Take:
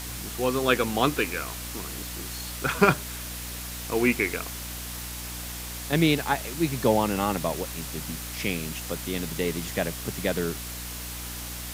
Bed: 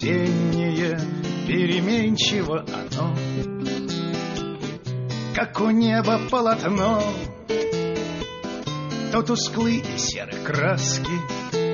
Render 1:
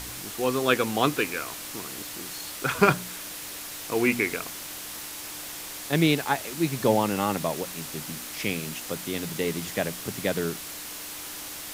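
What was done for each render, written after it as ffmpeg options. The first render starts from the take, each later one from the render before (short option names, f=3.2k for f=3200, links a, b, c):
-af "bandreject=f=60:t=h:w=4,bandreject=f=120:t=h:w=4,bandreject=f=180:t=h:w=4,bandreject=f=240:t=h:w=4"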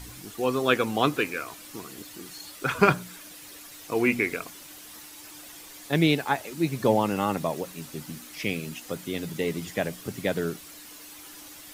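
-af "afftdn=nr=10:nf=-38"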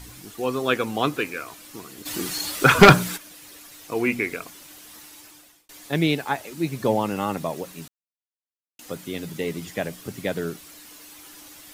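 -filter_complex "[0:a]asplit=3[a][b][c];[a]afade=t=out:st=2.05:d=0.02[d];[b]aeval=exprs='0.75*sin(PI/2*2.82*val(0)/0.75)':c=same,afade=t=in:st=2.05:d=0.02,afade=t=out:st=3.16:d=0.02[e];[c]afade=t=in:st=3.16:d=0.02[f];[d][e][f]amix=inputs=3:normalize=0,asplit=4[g][h][i][j];[g]atrim=end=5.69,asetpts=PTS-STARTPTS,afade=t=out:st=5.14:d=0.55[k];[h]atrim=start=5.69:end=7.88,asetpts=PTS-STARTPTS,afade=t=in:d=0.004:c=hsin,afade=t=out:st=2.186:d=0.004:c=hsin[l];[i]atrim=start=7.88:end=8.79,asetpts=PTS-STARTPTS,volume=0[m];[j]atrim=start=8.79,asetpts=PTS-STARTPTS,afade=t=in:d=0.004:c=hsin[n];[k][l][m][n]concat=n=4:v=0:a=1"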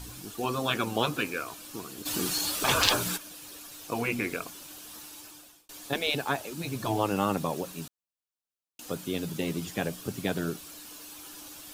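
-af "afftfilt=real='re*lt(hypot(re,im),0.355)':imag='im*lt(hypot(re,im),0.355)':win_size=1024:overlap=0.75,equalizer=f=2k:t=o:w=0.27:g=-9"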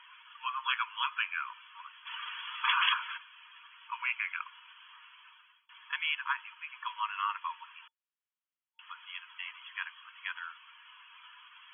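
-af "afftfilt=real='re*between(b*sr/4096,910,3400)':imag='im*between(b*sr/4096,910,3400)':win_size=4096:overlap=0.75"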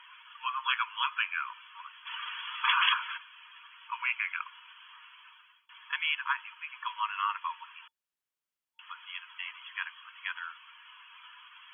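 -af "volume=2dB"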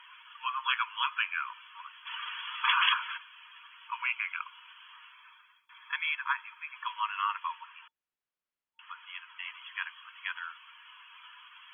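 -filter_complex "[0:a]asettb=1/sr,asplit=3[a][b][c];[a]atrim=end=4.074[d];[b]atrim=start=4.07:end=4.59,asetpts=PTS-STARTPTS,afade=t=in:d=0.004:c=qsin,afade=t=out:st=0.516:d=0.004:c=qsin,equalizer=f=1.8k:t=o:w=0.23:g=-8[e];[c]atrim=start=4.586[f];[d][e]acrossfade=d=0.004:c1=hsin:c2=qsin[g];[g][f]acrossfade=d=0.004:c1=qsin:c2=hsin,asettb=1/sr,asplit=3[h][i][j];[h]atrim=end=5.124[k];[i]atrim=start=5.12:end=6.76,asetpts=PTS-STARTPTS,afade=t=in:d=0.004:c=qsin,afade=t=out:st=1.636:d=0.004:c=qsin,asuperstop=centerf=2900:order=4:qfactor=6.5[l];[j]atrim=start=6.756[m];[k][l]acrossfade=d=0.004:c1=hsin:c2=qsin[n];[n][m]acrossfade=d=0.004:c1=qsin:c2=hsin,asettb=1/sr,asplit=3[o][p][q];[o]atrim=end=7.584[r];[p]atrim=start=7.58:end=9.45,asetpts=PTS-STARTPTS,afade=t=in:d=0.004:c=qsin,afade=t=out:st=1.866:d=0.004:c=qsin,lowpass=3k[s];[q]atrim=start=9.446[t];[r][s]acrossfade=d=0.004:c1=hsin:c2=qsin[u];[u][t]acrossfade=d=0.004:c1=qsin:c2=hsin"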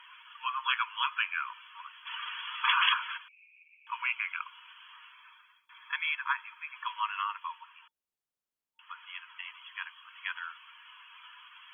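-filter_complex "[0:a]asettb=1/sr,asplit=3[a][b][c];[a]atrim=end=3.284[d];[b]atrim=start=3.28:end=3.87,asetpts=PTS-STARTPTS,afade=t=in:d=0.004:c=qsin,afade=t=out:st=0.586:d=0.004:c=qsin,asuperpass=centerf=2400:order=8:qfactor=5.3[e];[c]atrim=start=3.866[f];[d][e]acrossfade=d=0.004:c1=hsin:c2=qsin[g];[g][f]acrossfade=d=0.004:c1=qsin:c2=hsin,asplit=3[h][i][j];[h]afade=t=out:st=7.22:d=0.02[k];[i]equalizer=f=1.8k:t=o:w=1.9:g=-5.5,afade=t=in:st=7.22:d=0.02,afade=t=out:st=8.89:d=0.02[l];[j]afade=t=in:st=8.89:d=0.02[m];[k][l][m]amix=inputs=3:normalize=0,asettb=1/sr,asplit=3[n][o][p];[n]atrim=end=9.414[q];[o]atrim=start=9.41:end=10.11,asetpts=PTS-STARTPTS,afade=t=in:d=0.004:c=qsin,afade=t=out:st=0.696:d=0.004:c=qsin,equalizer=f=1.9k:t=o:w=1.5:g=-4[r];[p]atrim=start=10.106[s];[q][r]acrossfade=d=0.004:c1=hsin:c2=qsin[t];[t][s]acrossfade=d=0.004:c1=qsin:c2=hsin"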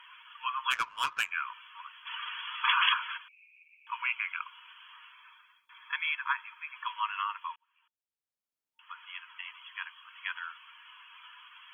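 -filter_complex "[0:a]asplit=3[a][b][c];[a]afade=t=out:st=0.7:d=0.02[d];[b]adynamicsmooth=sensitivity=4.5:basefreq=1.2k,afade=t=in:st=0.7:d=0.02,afade=t=out:st=1.3:d=0.02[e];[c]afade=t=in:st=1.3:d=0.02[f];[d][e][f]amix=inputs=3:normalize=0,asplit=2[g][h];[g]atrim=end=7.56,asetpts=PTS-STARTPTS,afade=t=out:st=7.556:d=0.004:c=hsin[i];[h]atrim=start=7.56,asetpts=PTS-STARTPTS,afade=t=in:d=1.44[j];[i][j]concat=n=2:v=0:a=1"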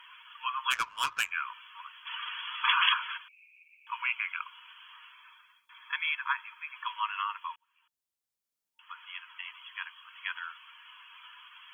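-af "bass=f=250:g=2,treble=f=4k:g=5,bandreject=f=60:t=h:w=6,bandreject=f=120:t=h:w=6"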